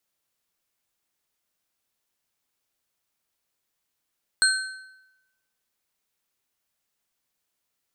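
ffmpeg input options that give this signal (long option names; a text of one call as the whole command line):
ffmpeg -f lavfi -i "aevalsrc='0.133*pow(10,-3*t/0.95)*sin(2*PI*1530*t)+0.119*pow(10,-3*t/0.701)*sin(2*PI*4218.2*t)+0.106*pow(10,-3*t/0.573)*sin(2*PI*8268.1*t)':duration=1.55:sample_rate=44100" out.wav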